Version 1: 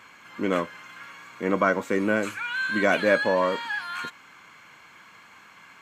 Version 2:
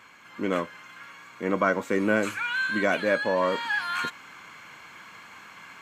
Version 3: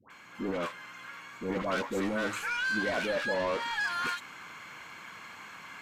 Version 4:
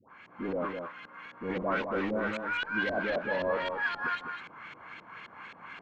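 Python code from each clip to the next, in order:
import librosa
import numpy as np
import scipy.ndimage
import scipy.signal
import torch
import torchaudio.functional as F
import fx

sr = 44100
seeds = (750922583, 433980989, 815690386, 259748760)

y1 = fx.rider(x, sr, range_db=4, speed_s=0.5)
y2 = 10.0 ** (-27.0 / 20.0) * np.tanh(y1 / 10.0 ** (-27.0 / 20.0))
y2 = fx.dispersion(y2, sr, late='highs', ms=103.0, hz=900.0)
y2 = fx.end_taper(y2, sr, db_per_s=210.0)
y3 = fx.filter_lfo_lowpass(y2, sr, shape='saw_up', hz=3.8, low_hz=430.0, high_hz=3800.0, q=1.5)
y3 = y3 + 10.0 ** (-6.0 / 20.0) * np.pad(y3, (int(204 * sr / 1000.0), 0))[:len(y3)]
y3 = F.gain(torch.from_numpy(y3), -1.5).numpy()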